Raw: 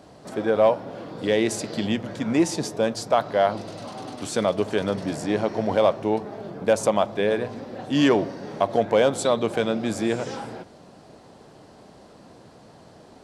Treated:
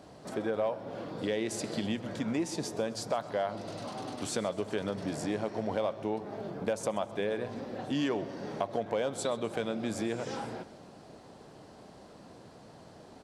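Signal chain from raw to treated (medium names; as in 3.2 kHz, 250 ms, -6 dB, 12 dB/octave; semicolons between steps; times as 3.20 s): compression 3:1, threshold -27 dBFS, peak gain reduction 10.5 dB; on a send: feedback delay 130 ms, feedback 56%, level -19 dB; on the sum: trim -3.5 dB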